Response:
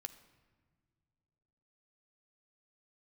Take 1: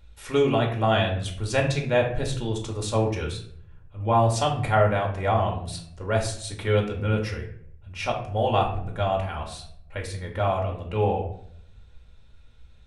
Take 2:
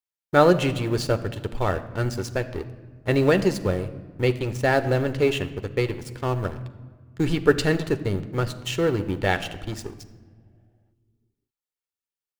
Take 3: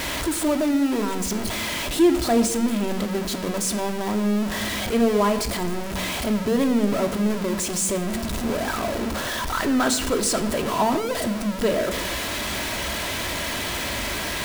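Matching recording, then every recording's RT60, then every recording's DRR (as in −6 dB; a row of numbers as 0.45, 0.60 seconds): 2; 0.65 s, non-exponential decay, non-exponential decay; 0.0, 9.5, 5.5 decibels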